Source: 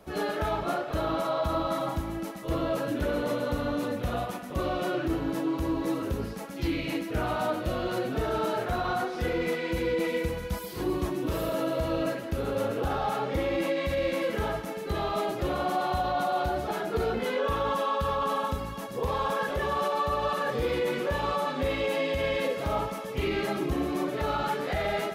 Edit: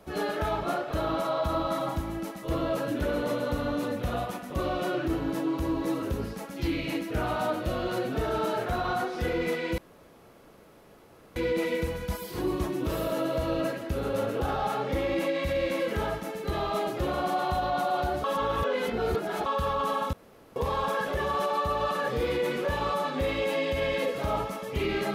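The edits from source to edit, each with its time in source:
9.78 insert room tone 1.58 s
16.66–17.88 reverse
18.55–18.98 room tone

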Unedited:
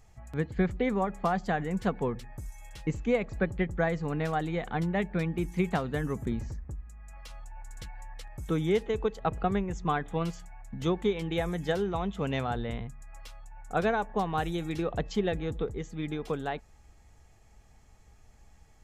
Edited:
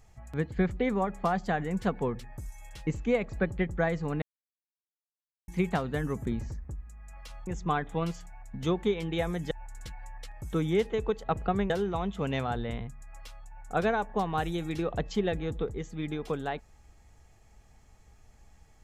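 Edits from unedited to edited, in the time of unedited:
4.22–5.48 mute
9.66–11.7 move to 7.47

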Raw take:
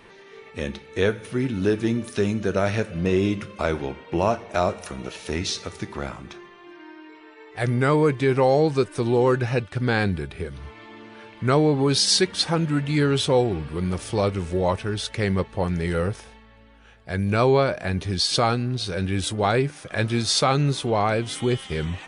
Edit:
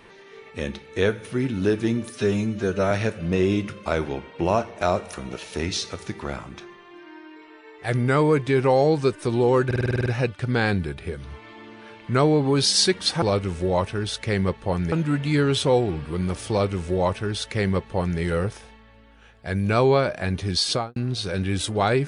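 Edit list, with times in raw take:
2.1–2.64 stretch 1.5×
9.39 stutter 0.05 s, 9 plays
14.13–15.83 copy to 12.55
18.3–18.59 studio fade out

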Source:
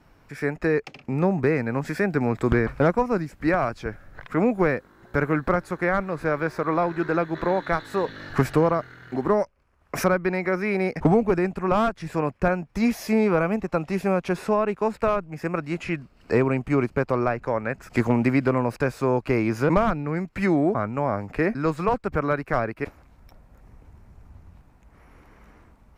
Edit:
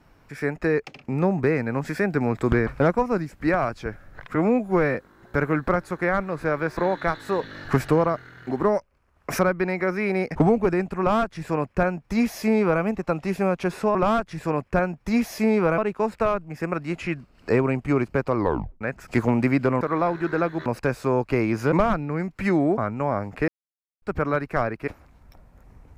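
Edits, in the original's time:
4.35–4.75 stretch 1.5×
6.57–7.42 move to 18.63
11.64–13.47 copy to 14.6
17.17 tape stop 0.46 s
21.45–21.99 mute

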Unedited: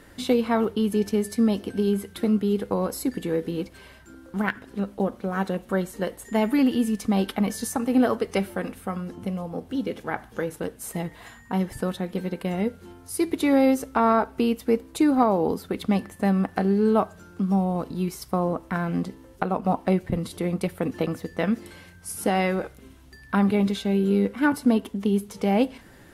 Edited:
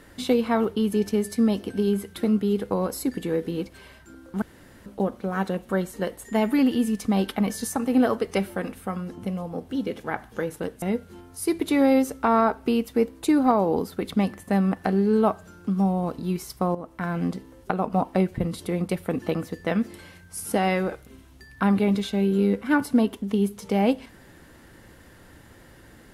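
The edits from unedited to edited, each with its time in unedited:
4.42–4.86 room tone
10.82–12.54 cut
18.47–18.88 fade in, from -13 dB

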